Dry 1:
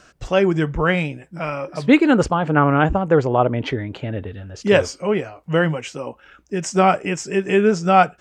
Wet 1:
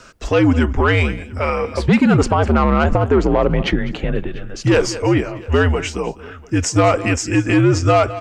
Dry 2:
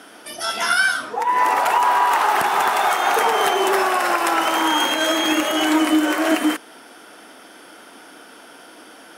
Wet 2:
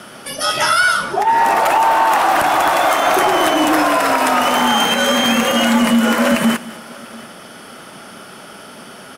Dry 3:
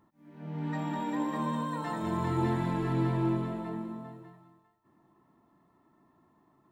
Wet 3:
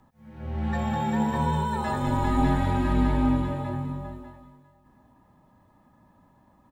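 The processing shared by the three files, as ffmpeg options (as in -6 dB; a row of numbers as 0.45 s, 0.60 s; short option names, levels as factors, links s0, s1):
-filter_complex "[0:a]acontrast=74,asplit=2[s0][s1];[s1]aecho=0:1:202:0.119[s2];[s0][s2]amix=inputs=2:normalize=0,alimiter=limit=0.473:level=0:latency=1:release=72,asplit=2[s3][s4];[s4]aecho=0:1:694:0.0668[s5];[s3][s5]amix=inputs=2:normalize=0,afreqshift=-78"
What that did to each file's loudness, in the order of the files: +2.0 LU, +4.0 LU, +6.0 LU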